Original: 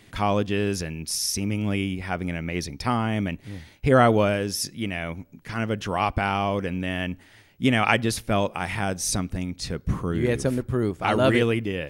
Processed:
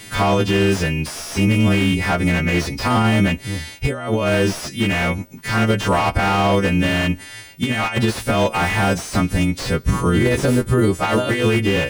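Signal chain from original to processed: partials quantised in pitch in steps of 2 st; bass shelf 91 Hz +2.5 dB; compressor with a negative ratio -23 dBFS, ratio -0.5; loudness maximiser +15 dB; slew-rate limiter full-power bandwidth 380 Hz; trim -5.5 dB

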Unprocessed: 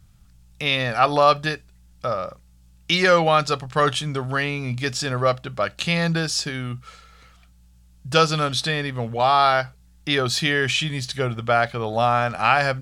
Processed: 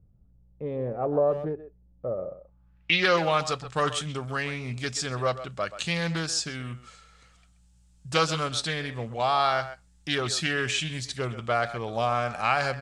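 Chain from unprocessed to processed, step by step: low-pass sweep 470 Hz -> 8.2 kHz, 2.24–3.34 s; speakerphone echo 130 ms, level -12 dB; loudspeaker Doppler distortion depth 0.18 ms; trim -7 dB

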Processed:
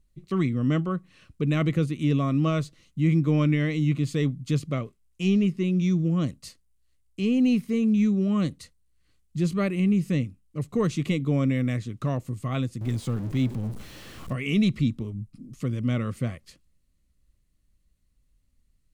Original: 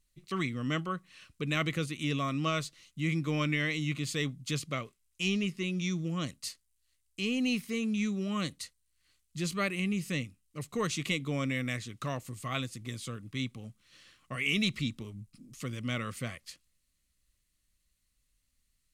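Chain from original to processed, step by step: 12.81–14.33 s: jump at every zero crossing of -39.5 dBFS; tilt shelf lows +8 dB, about 870 Hz; trim +3 dB

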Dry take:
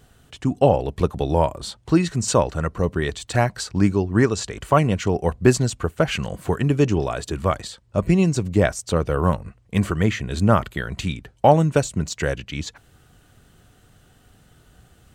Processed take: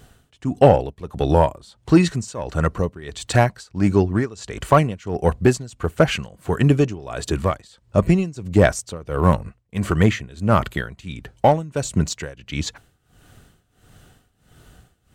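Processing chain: in parallel at -5 dB: hard clipper -13 dBFS, distortion -11 dB; on the sum: tremolo 1.5 Hz, depth 90%; trim +1 dB

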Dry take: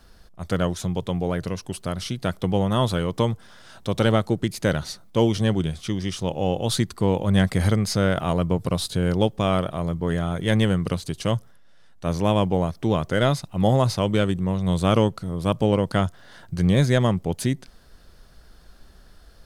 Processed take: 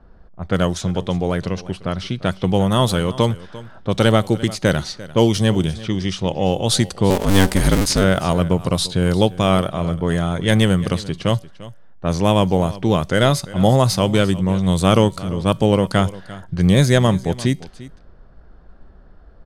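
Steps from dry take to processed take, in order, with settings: 7.10–8.04 s: cycle switcher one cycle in 2, inverted; level-controlled noise filter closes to 960 Hz, open at -18 dBFS; treble shelf 4.9 kHz +7.5 dB; feedback comb 190 Hz, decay 0.46 s, harmonics all, mix 30%; delay 346 ms -18 dB; trim +7.5 dB

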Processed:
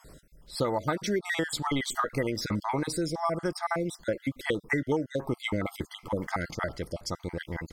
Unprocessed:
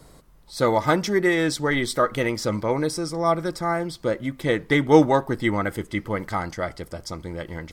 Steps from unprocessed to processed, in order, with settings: random holes in the spectrogram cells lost 41%; compression 16:1, threshold -24 dBFS, peak gain reduction 16.5 dB

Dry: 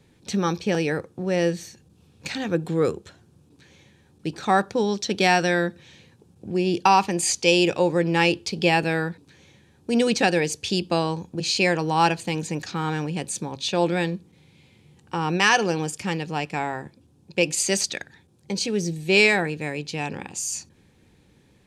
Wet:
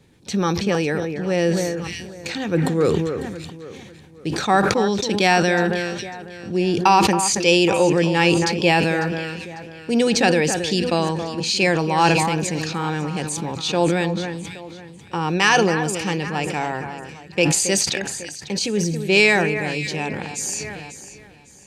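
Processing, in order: echo whose repeats swap between lows and highs 274 ms, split 2.2 kHz, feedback 61%, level -10 dB; decay stretcher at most 30 dB/s; trim +2 dB

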